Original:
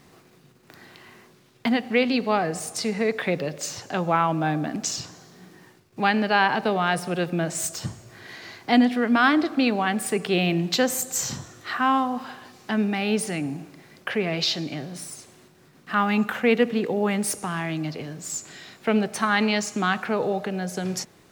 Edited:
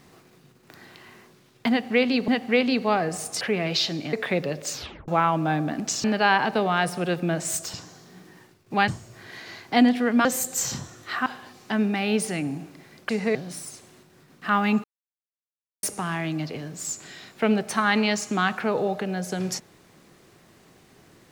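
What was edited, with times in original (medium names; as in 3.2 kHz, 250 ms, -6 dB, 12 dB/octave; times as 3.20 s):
1.70–2.28 s: loop, 2 plays
2.83–3.09 s: swap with 14.08–14.80 s
3.69 s: tape stop 0.35 s
5.00–6.14 s: move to 7.84 s
9.21–10.83 s: delete
11.84–12.25 s: delete
16.29–17.28 s: mute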